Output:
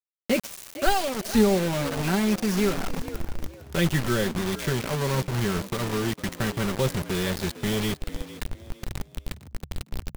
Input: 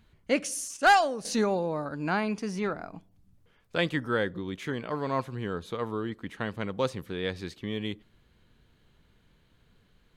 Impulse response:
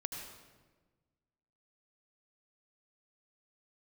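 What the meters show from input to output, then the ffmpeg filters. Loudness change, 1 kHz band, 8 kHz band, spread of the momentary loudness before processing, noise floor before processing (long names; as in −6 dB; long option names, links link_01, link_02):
+3.5 dB, −2.5 dB, +5.0 dB, 11 LU, −65 dBFS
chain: -filter_complex "[0:a]acrossover=split=2700[link_01][link_02];[link_02]acompressor=threshold=-45dB:ratio=4:attack=1:release=60[link_03];[link_01][link_03]amix=inputs=2:normalize=0,aecho=1:1:5.2:0.72,asubboost=boost=11.5:cutoff=66,acrossover=split=400|3000[link_04][link_05][link_06];[link_05]acompressor=threshold=-44dB:ratio=3[link_07];[link_04][link_07][link_06]amix=inputs=3:normalize=0,asplit=2[link_08][link_09];[link_09]aeval=exprs='sgn(val(0))*max(abs(val(0))-0.00237,0)':channel_layout=same,volume=-10.5dB[link_10];[link_08][link_10]amix=inputs=2:normalize=0,acrusher=bits=5:mix=0:aa=0.000001,asplit=4[link_11][link_12][link_13][link_14];[link_12]adelay=455,afreqshift=64,volume=-15dB[link_15];[link_13]adelay=910,afreqshift=128,volume=-24.6dB[link_16];[link_14]adelay=1365,afreqshift=192,volume=-34.3dB[link_17];[link_11][link_15][link_16][link_17]amix=inputs=4:normalize=0,volume=6dB"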